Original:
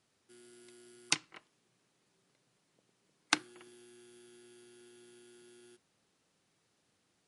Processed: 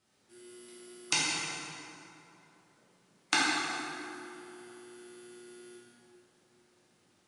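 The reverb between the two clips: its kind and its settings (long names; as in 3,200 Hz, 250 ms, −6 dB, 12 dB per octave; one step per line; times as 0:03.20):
dense smooth reverb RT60 2.9 s, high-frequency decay 0.6×, DRR −9 dB
level −2 dB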